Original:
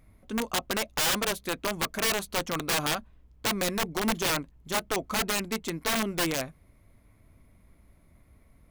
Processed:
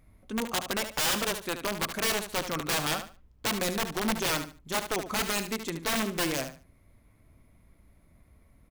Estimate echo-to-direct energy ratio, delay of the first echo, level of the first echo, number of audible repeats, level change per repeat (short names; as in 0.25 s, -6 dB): -9.5 dB, 73 ms, -9.5 dB, 2, -13.0 dB